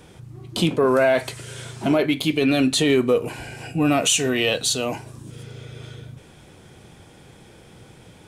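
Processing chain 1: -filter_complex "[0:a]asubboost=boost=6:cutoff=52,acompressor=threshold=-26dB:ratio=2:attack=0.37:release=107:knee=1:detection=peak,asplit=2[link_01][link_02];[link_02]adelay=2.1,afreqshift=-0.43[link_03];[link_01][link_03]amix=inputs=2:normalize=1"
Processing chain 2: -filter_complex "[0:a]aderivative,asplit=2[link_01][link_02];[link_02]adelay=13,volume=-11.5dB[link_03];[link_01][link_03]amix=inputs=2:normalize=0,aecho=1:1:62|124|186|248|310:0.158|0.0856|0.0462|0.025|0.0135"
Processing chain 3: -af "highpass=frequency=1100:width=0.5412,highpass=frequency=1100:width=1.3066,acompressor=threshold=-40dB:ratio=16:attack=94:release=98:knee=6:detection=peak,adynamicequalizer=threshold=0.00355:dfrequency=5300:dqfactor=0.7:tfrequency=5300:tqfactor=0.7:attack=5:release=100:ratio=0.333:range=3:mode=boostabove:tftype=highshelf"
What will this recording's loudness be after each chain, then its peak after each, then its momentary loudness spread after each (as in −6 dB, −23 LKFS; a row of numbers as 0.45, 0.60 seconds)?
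−31.5, −29.0, −34.0 LKFS; −17.0, −7.5, −10.5 dBFS; 23, 19, 21 LU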